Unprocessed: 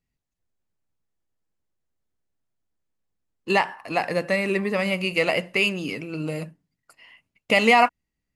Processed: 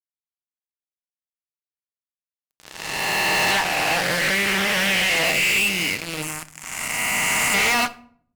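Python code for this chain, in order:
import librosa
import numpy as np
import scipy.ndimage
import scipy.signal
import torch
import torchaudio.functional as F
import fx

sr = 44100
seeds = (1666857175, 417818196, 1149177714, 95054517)

y = fx.spec_swells(x, sr, rise_s=2.45)
y = fx.tone_stack(y, sr, knobs='5-5-5')
y = fx.fuzz(y, sr, gain_db=42.0, gate_db=-41.0)
y = fx.graphic_eq(y, sr, hz=(500, 1000, 4000, 8000), db=(-11, 4, -10, 8), at=(6.22, 7.54))
y = fx.room_shoebox(y, sr, seeds[0], volume_m3=800.0, walls='furnished', distance_m=0.54)
y = fx.doppler_dist(y, sr, depth_ms=0.3, at=(3.51, 5.25))
y = y * 10.0 ** (-4.5 / 20.0)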